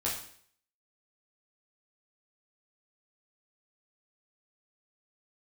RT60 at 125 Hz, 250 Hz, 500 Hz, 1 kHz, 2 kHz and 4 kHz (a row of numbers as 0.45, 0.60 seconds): 0.60, 0.60, 0.60, 0.55, 0.60, 0.55 seconds